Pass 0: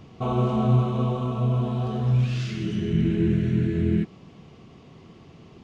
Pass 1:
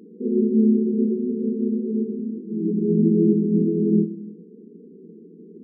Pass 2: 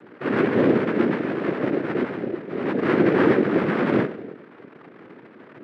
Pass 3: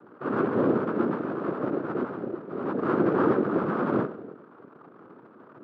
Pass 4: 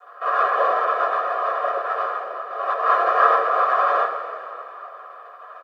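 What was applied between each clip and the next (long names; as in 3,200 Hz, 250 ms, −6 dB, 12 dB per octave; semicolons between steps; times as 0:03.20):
convolution reverb RT60 0.75 s, pre-delay 7 ms, DRR 10 dB; brick-wall band-pass 170–490 Hz; level +7 dB
cochlear-implant simulation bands 3; high-pass filter 240 Hz 12 dB per octave; level +1.5 dB
high shelf with overshoot 1,600 Hz −7 dB, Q 3; level −5.5 dB
high-pass filter 710 Hz 24 dB per octave; comb filter 1.7 ms, depth 69%; coupled-rooms reverb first 0.21 s, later 3.1 s, from −18 dB, DRR −7 dB; level +4.5 dB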